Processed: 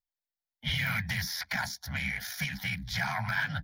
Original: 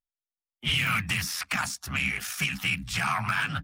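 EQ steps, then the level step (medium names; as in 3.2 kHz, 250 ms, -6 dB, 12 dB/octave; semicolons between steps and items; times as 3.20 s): static phaser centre 1.8 kHz, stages 8; 0.0 dB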